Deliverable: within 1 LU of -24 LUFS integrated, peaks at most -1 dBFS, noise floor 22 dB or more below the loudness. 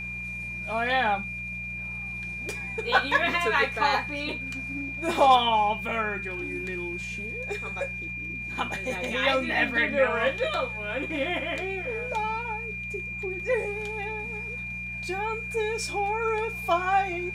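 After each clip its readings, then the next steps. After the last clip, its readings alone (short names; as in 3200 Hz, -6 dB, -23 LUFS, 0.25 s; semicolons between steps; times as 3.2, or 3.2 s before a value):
hum 60 Hz; harmonics up to 180 Hz; hum level -39 dBFS; steady tone 2400 Hz; tone level -33 dBFS; loudness -27.0 LUFS; peak -9.0 dBFS; loudness target -24.0 LUFS
-> de-hum 60 Hz, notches 3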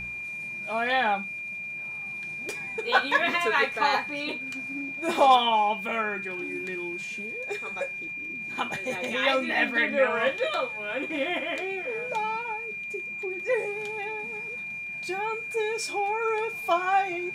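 hum none; steady tone 2400 Hz; tone level -33 dBFS
-> notch 2400 Hz, Q 30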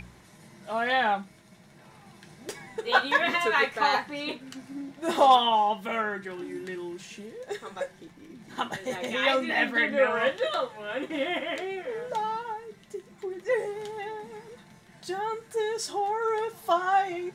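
steady tone none; loudness -27.5 LUFS; peak -9.5 dBFS; loudness target -24.0 LUFS
-> gain +3.5 dB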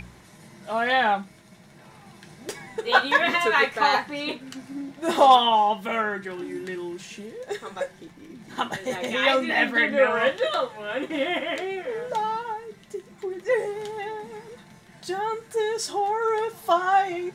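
loudness -24.0 LUFS; peak -6.0 dBFS; noise floor -51 dBFS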